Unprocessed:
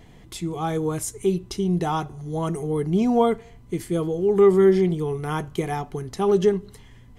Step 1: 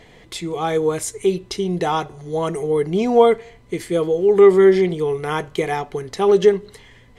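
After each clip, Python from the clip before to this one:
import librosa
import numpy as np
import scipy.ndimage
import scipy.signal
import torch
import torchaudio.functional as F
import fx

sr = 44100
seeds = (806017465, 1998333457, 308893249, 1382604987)

y = fx.graphic_eq(x, sr, hz=(500, 1000, 2000, 4000, 8000), db=(11, 3, 10, 8, 5))
y = y * librosa.db_to_amplitude(-3.0)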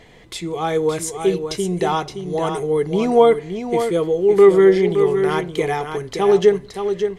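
y = x + 10.0 ** (-7.5 / 20.0) * np.pad(x, (int(569 * sr / 1000.0), 0))[:len(x)]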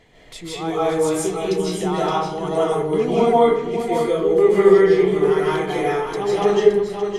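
y = fx.rev_freeverb(x, sr, rt60_s=0.82, hf_ratio=0.55, predelay_ms=115, drr_db=-7.5)
y = y * librosa.db_to_amplitude(-7.5)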